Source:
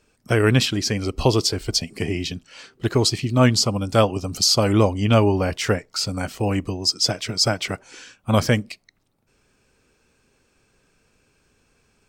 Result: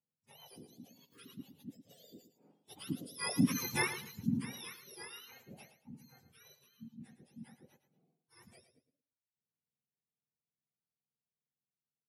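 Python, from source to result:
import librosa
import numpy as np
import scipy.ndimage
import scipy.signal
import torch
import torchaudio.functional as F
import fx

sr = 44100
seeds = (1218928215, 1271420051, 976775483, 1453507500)

p1 = fx.octave_mirror(x, sr, pivot_hz=1100.0)
p2 = fx.doppler_pass(p1, sr, speed_mps=17, closest_m=2.2, pass_at_s=3.65)
p3 = fx.wow_flutter(p2, sr, seeds[0], rate_hz=2.1, depth_cents=23.0)
p4 = p3 + fx.echo_feedback(p3, sr, ms=111, feedback_pct=24, wet_db=-11.0, dry=0)
y = F.gain(torch.from_numpy(p4), -8.5).numpy()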